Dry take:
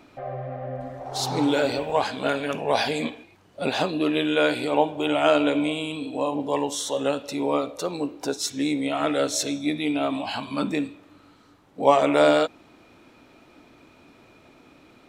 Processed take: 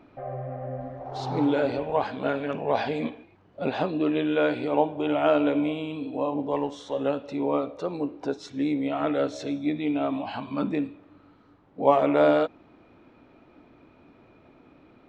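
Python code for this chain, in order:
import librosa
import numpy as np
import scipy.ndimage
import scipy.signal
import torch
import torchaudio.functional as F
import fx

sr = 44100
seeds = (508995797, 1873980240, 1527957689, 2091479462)

y = fx.law_mismatch(x, sr, coded='A', at=(6.51, 6.99))
y = fx.spacing_loss(y, sr, db_at_10k=31)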